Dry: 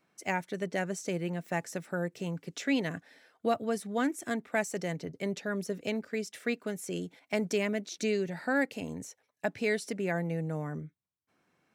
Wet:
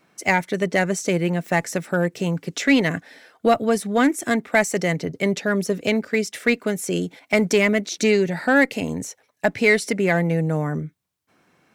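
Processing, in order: dynamic bell 2.1 kHz, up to +7 dB, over -53 dBFS, Q 6.5; in parallel at -3 dB: one-sided clip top -25 dBFS; on the sum: trim +7.5 dB

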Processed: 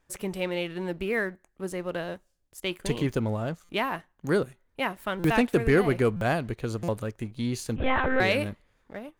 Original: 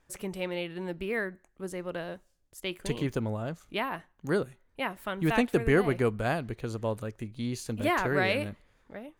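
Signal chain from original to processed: waveshaping leveller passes 1; 7.76–8.20 s: monotone LPC vocoder at 8 kHz 260 Hz; buffer glitch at 3.64/5.19/6.16/6.83 s, samples 256, times 8

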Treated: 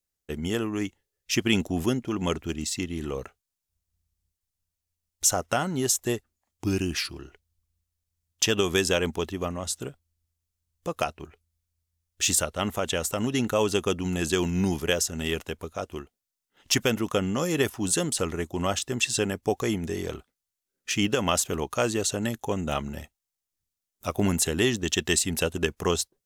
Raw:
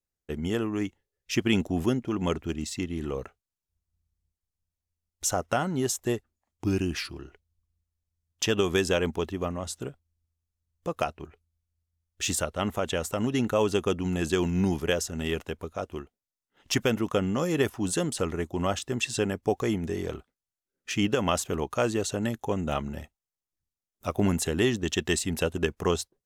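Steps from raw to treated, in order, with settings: treble shelf 2.9 kHz +7.5 dB

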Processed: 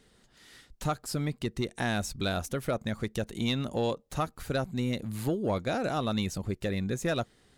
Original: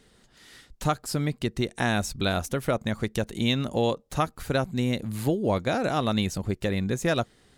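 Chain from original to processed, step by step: saturation -14.5 dBFS, distortion -19 dB; trim -3.5 dB

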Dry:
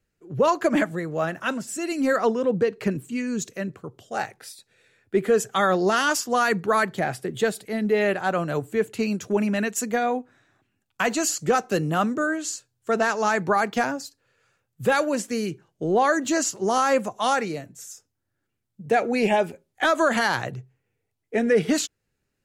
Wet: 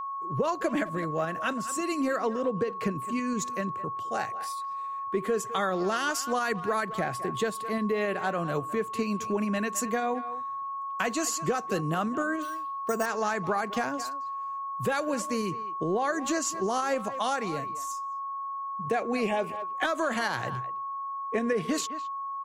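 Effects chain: tremolo saw up 7.2 Hz, depth 30%; speakerphone echo 210 ms, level -16 dB; 12.42–13.06 s: careless resampling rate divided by 6×, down filtered, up hold; whistle 1.1 kHz -32 dBFS; compression 3:1, threshold -26 dBFS, peak gain reduction 8 dB

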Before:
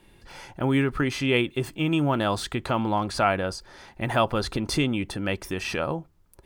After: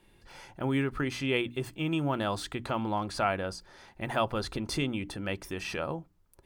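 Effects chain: hum notches 60/120/180/240/300 Hz; trim -6 dB

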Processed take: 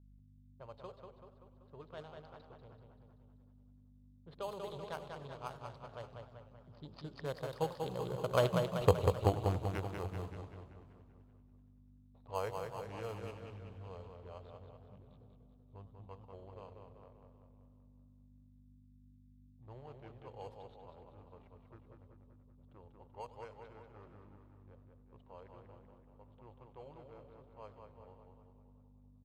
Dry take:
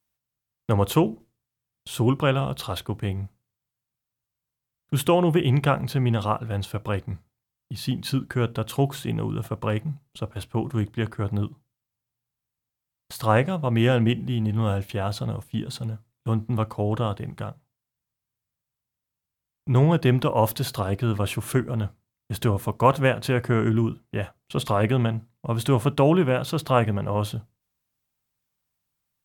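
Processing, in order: local Wiener filter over 25 samples; Doppler pass-by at 8.78 s, 46 m/s, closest 4.3 m; graphic EQ 250/500/1000/4000 Hz -11/+9/+8/+11 dB; hum 50 Hz, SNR 16 dB; in parallel at -6 dB: sample-and-hold 12×; on the sum: feedback delay 192 ms, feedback 57%, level -5 dB; level-controlled noise filter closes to 1.4 kHz, open at -41 dBFS; modulated delay 96 ms, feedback 77%, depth 207 cents, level -17.5 dB; trim +2.5 dB

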